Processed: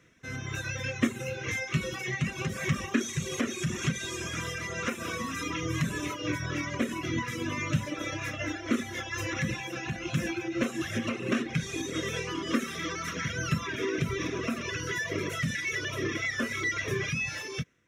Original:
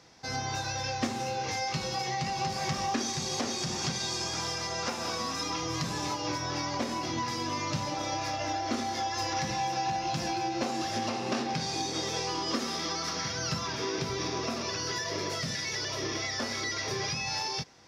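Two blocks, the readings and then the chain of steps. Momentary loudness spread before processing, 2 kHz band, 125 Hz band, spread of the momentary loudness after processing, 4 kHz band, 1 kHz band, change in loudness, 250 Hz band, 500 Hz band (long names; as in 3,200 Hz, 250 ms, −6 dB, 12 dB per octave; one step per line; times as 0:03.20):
2 LU, +5.0 dB, +4.5 dB, 4 LU, −5.5 dB, −8.0 dB, 0.0 dB, +4.0 dB, +0.5 dB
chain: reverb reduction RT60 1.3 s
automatic gain control gain up to 7.5 dB
phaser with its sweep stopped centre 2,000 Hz, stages 4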